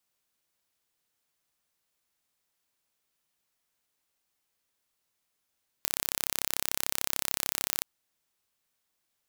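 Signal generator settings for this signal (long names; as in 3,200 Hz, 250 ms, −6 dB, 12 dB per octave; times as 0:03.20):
impulse train 33.5 per second, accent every 0, −1.5 dBFS 1.97 s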